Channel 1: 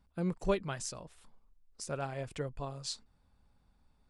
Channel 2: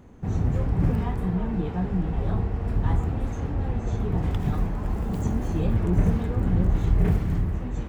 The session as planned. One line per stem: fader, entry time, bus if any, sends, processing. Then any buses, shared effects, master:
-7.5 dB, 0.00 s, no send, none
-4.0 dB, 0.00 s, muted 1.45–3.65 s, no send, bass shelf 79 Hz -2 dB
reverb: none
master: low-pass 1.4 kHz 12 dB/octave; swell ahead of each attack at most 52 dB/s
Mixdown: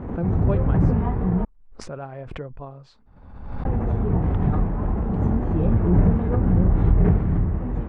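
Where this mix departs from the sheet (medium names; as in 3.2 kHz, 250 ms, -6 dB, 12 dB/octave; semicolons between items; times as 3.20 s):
stem 1 -7.5 dB -> +3.0 dB; stem 2 -4.0 dB -> +4.0 dB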